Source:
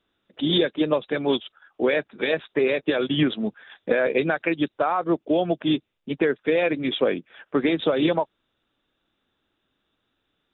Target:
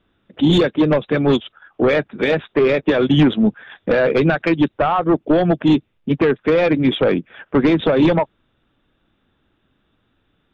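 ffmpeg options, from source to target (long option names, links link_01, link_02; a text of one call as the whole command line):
ffmpeg -i in.wav -af "aeval=exprs='0.398*(cos(1*acos(clip(val(0)/0.398,-1,1)))-cos(1*PI/2))+0.141*(cos(5*acos(clip(val(0)/0.398,-1,1)))-cos(5*PI/2))+0.0141*(cos(7*acos(clip(val(0)/0.398,-1,1)))-cos(7*PI/2))':channel_layout=same,bass=frequency=250:gain=8,treble=frequency=4000:gain=-12" out.wav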